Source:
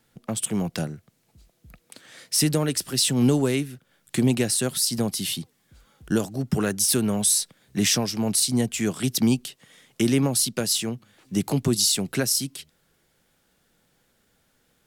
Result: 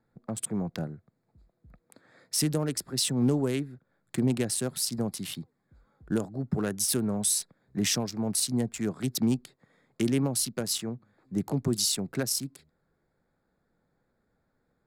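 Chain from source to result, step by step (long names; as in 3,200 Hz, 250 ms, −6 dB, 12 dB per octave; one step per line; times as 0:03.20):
adaptive Wiener filter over 15 samples
level −5 dB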